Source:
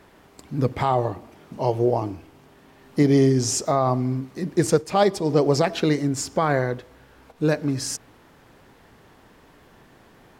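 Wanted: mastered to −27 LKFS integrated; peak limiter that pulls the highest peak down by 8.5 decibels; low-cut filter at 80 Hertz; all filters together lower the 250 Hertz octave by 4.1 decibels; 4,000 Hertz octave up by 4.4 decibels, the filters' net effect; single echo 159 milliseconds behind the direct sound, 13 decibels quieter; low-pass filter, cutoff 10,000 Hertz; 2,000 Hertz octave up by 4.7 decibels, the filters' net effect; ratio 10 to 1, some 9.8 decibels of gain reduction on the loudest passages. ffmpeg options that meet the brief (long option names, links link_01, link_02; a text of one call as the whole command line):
ffmpeg -i in.wav -af "highpass=80,lowpass=10000,equalizer=frequency=250:width_type=o:gain=-5.5,equalizer=frequency=2000:width_type=o:gain=5,equalizer=frequency=4000:width_type=o:gain=5,acompressor=threshold=-24dB:ratio=10,alimiter=limit=-21.5dB:level=0:latency=1,aecho=1:1:159:0.224,volume=5.5dB" out.wav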